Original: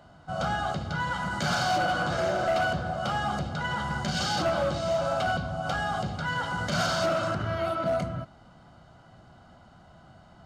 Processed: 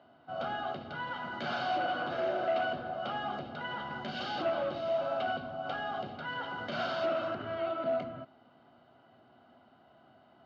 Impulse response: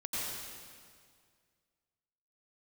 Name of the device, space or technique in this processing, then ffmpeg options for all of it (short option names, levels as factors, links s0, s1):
kitchen radio: -af "highpass=170,equalizer=f=180:t=q:w=4:g=-10,equalizer=f=250:t=q:w=4:g=8,equalizer=f=390:t=q:w=4:g=6,equalizer=f=670:t=q:w=4:g=4,equalizer=f=2800:t=q:w=4:g=4,lowpass=f=3900:w=0.5412,lowpass=f=3900:w=1.3066,volume=0.398"